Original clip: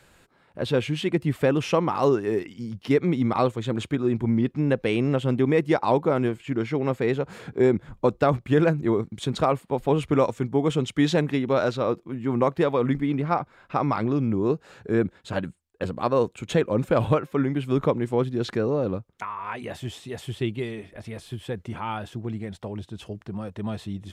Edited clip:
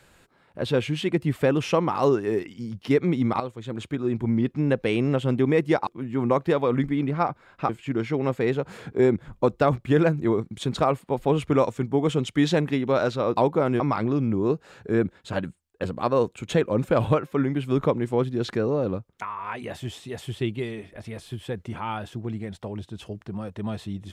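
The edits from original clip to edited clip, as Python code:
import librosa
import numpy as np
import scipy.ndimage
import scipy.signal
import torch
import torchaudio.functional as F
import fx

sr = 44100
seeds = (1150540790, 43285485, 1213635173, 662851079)

y = fx.edit(x, sr, fx.fade_in_from(start_s=3.4, length_s=1.34, curve='qsin', floor_db=-12.5),
    fx.swap(start_s=5.87, length_s=0.43, other_s=11.98, other_length_s=1.82), tone=tone)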